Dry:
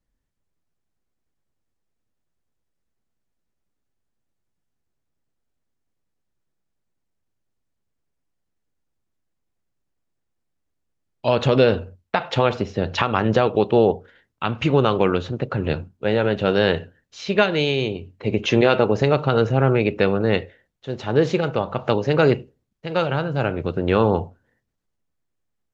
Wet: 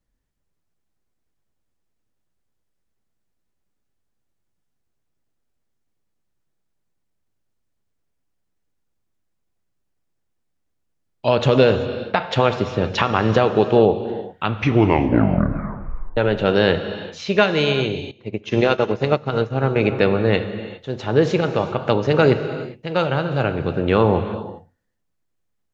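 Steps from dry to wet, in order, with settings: 14.48 tape stop 1.69 s; non-linear reverb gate 0.43 s flat, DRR 9.5 dB; 18.11–19.76 upward expander 2.5:1, over -25 dBFS; gain +1.5 dB

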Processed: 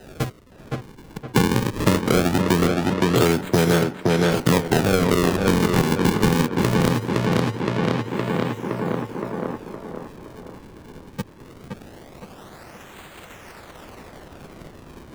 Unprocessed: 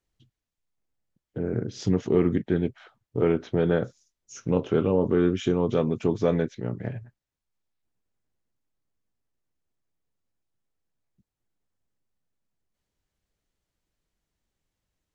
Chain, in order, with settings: spectral whitening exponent 0.6; HPF 60 Hz; in parallel at +2 dB: compressor, threshold -30 dBFS, peak gain reduction 13.5 dB; on the sum: decimation with a swept rate 39×, swing 160% 0.21 Hz; on a send: tape echo 0.516 s, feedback 49%, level -3.5 dB, low-pass 2600 Hz; on the sum: three-band squash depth 100%; gain +1.5 dB

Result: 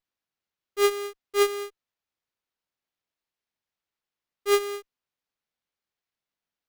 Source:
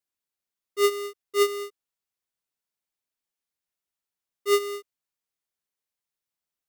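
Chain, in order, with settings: running maximum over 5 samples

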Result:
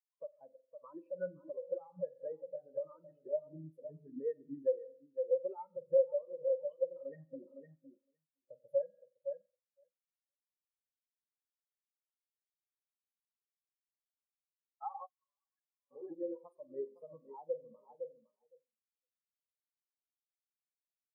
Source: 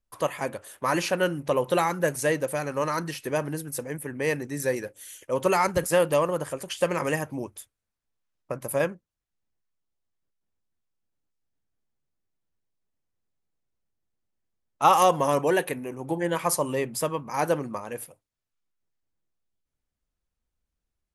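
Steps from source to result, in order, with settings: feedback echo 0.51 s, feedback 32%, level -7.5 dB; spring tank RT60 1 s, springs 44 ms, chirp 30 ms, DRR 5.5 dB; compressor 8:1, threshold -29 dBFS, peak gain reduction 16 dB; 15.06–15.91 passive tone stack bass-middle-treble 10-0-10; spectral expander 4:1; gain -2 dB

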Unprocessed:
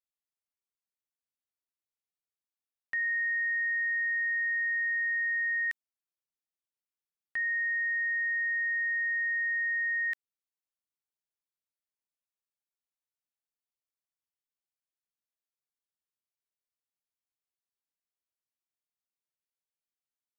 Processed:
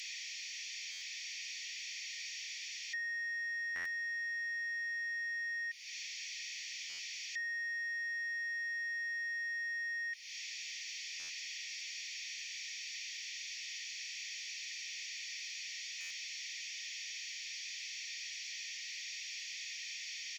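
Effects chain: delta modulation 32 kbps, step -53.5 dBFS; compressor 6:1, threshold -56 dBFS, peak gain reduction 12 dB; sample leveller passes 1; rippled Chebyshev high-pass 1800 Hz, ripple 6 dB; comb 0.9 ms, depth 36%; stuck buffer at 0.91/3.75/6.89/11.19/16, samples 512, times 8; gain +16.5 dB

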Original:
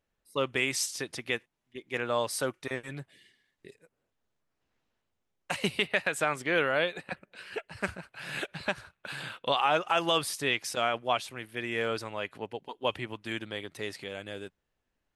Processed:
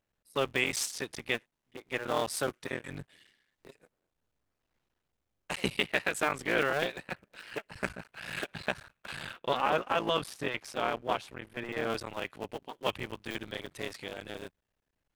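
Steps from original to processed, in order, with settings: cycle switcher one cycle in 3, muted; 9.33–11.9 high shelf 3000 Hz -9.5 dB

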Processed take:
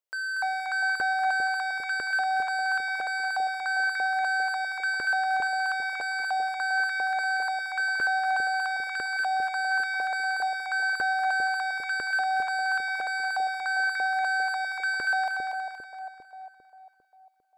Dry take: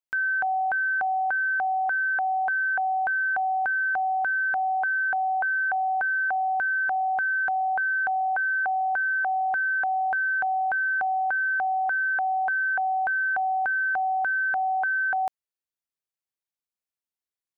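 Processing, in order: soft clip -31.5 dBFS, distortion -12 dB; LFO high-pass saw up 1 Hz 440–1900 Hz; split-band echo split 810 Hz, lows 0.4 s, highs 0.236 s, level -3.5 dB

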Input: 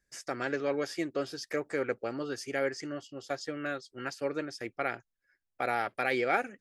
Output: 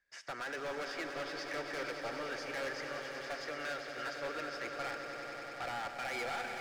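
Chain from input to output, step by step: three-band isolator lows -16 dB, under 590 Hz, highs -22 dB, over 4300 Hz; limiter -26.5 dBFS, peak gain reduction 10 dB; hard clip -39 dBFS, distortion -7 dB; swelling echo 96 ms, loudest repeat 5, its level -10 dB; gain +2 dB

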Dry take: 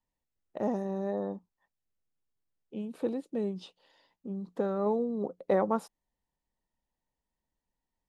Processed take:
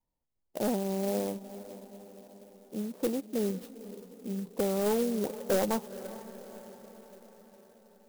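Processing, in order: LPF 5900 Hz; band shelf 2100 Hz -9.5 dB; hard clip -24 dBFS, distortion -13 dB; diffused feedback echo 0.469 s, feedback 59%, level -14.5 dB; clock jitter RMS 0.077 ms; gain +2 dB

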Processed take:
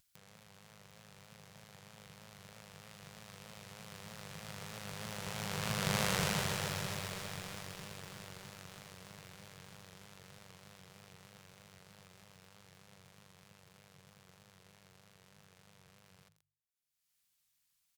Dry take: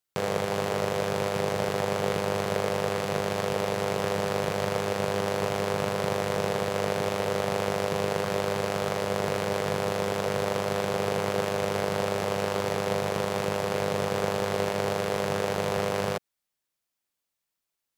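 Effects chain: Doppler pass-by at 6.05, 10 m/s, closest 2.7 m; resonant low shelf 220 Hz +7 dB, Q 1.5; notches 50/100/150 Hz; upward compressor, threshold -53 dBFS; vibrato 3.2 Hz 81 cents; passive tone stack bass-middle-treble 5-5-5; on a send: echo 82 ms -18.5 dB; on the sum: lo-fi delay 0.133 s, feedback 80%, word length 10-bit, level -5.5 dB; gain +9 dB

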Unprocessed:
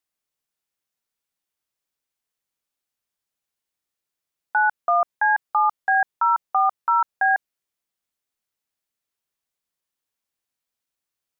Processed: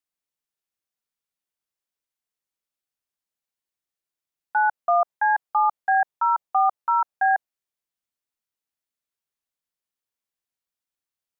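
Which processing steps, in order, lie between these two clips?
dynamic EQ 730 Hz, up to +7 dB, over -32 dBFS, Q 1.2; gain -5.5 dB

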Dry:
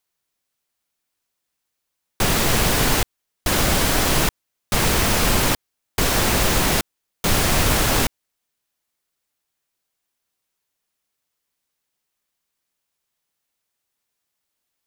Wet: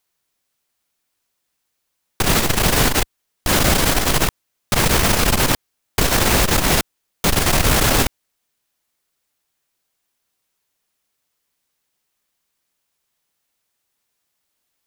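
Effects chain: core saturation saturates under 110 Hz; gain +4.5 dB

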